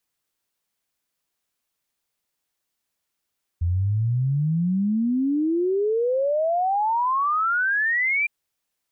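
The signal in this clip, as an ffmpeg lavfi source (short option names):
-f lavfi -i "aevalsrc='0.112*clip(min(t,4.66-t)/0.01,0,1)*sin(2*PI*83*4.66/log(2400/83)*(exp(log(2400/83)*t/4.66)-1))':d=4.66:s=44100"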